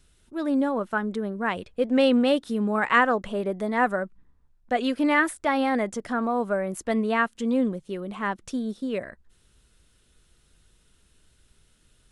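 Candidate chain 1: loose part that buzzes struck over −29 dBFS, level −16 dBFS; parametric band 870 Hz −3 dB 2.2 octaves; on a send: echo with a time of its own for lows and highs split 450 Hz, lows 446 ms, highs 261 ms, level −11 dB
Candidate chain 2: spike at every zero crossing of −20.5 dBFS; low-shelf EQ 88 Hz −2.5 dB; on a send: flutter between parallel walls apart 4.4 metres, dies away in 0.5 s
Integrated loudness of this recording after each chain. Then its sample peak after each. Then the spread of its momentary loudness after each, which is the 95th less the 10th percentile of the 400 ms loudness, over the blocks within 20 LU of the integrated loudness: −26.5, −22.0 LKFS; −8.5, −2.5 dBFS; 12, 8 LU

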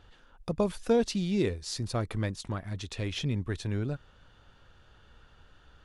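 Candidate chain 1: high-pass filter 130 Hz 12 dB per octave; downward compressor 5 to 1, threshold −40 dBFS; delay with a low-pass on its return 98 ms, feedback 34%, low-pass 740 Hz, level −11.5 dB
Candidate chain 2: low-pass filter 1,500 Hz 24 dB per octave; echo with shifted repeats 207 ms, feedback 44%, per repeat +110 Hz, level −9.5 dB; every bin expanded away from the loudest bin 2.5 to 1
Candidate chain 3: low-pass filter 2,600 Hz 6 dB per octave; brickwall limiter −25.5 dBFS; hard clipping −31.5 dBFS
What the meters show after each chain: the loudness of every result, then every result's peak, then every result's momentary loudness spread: −43.5, −32.0, −37.5 LKFS; −25.5, −13.5, −31.5 dBFS; 20, 25, 5 LU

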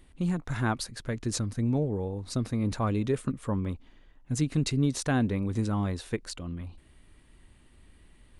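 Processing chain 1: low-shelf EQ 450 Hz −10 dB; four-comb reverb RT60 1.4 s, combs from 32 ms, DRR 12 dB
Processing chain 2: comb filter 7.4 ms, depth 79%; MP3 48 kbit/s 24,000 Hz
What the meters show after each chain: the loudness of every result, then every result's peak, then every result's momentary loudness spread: −36.0, −28.0 LKFS; −17.0, −11.0 dBFS; 8, 12 LU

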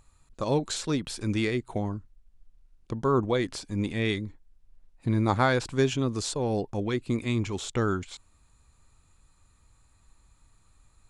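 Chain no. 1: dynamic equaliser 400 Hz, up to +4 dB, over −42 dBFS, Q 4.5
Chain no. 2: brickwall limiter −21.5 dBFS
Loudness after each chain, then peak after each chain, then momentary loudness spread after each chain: −27.5, −32.0 LKFS; −9.5, −21.5 dBFS; 11, 6 LU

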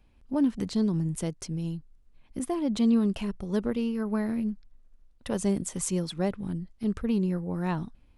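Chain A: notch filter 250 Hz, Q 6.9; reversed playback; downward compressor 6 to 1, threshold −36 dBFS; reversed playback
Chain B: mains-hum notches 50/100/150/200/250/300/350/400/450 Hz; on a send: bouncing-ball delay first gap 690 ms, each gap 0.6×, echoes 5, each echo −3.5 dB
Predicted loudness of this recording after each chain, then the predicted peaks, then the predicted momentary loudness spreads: −40.0, −28.0 LKFS; −25.0, −12.0 dBFS; 4, 5 LU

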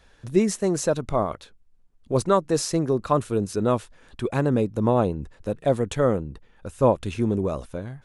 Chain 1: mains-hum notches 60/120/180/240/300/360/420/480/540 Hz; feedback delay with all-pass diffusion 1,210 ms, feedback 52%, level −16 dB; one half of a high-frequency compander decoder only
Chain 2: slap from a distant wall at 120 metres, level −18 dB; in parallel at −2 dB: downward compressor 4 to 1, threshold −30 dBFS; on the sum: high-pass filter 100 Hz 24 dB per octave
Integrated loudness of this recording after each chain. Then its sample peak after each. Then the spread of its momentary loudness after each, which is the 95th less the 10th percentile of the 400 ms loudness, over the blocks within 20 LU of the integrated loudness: −24.5, −22.5 LKFS; −6.5, −3.5 dBFS; 15, 14 LU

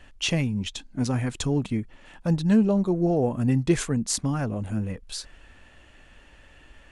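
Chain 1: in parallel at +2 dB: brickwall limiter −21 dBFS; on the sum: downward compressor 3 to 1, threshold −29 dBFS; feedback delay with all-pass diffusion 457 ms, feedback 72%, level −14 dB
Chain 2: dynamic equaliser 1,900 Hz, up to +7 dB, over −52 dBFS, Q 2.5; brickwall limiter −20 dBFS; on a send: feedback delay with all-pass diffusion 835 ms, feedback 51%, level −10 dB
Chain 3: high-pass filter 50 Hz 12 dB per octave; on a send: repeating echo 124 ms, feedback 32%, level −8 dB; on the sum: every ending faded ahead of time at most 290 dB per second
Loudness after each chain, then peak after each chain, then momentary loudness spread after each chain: −30.0, −29.5, −25.0 LKFS; −15.0, −17.0, −9.5 dBFS; 14, 15, 11 LU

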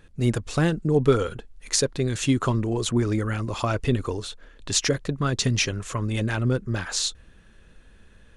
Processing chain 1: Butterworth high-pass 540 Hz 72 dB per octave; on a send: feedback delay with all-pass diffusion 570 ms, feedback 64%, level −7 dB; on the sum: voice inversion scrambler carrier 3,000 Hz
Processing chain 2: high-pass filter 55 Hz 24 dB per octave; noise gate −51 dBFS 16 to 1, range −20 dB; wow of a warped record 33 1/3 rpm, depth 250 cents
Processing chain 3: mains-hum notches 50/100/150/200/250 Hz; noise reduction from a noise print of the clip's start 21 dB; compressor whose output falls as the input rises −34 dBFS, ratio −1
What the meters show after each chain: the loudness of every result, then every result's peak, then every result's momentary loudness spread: −33.0, −25.0, −33.0 LKFS; −12.0, −3.0, −12.0 dBFS; 10, 6, 8 LU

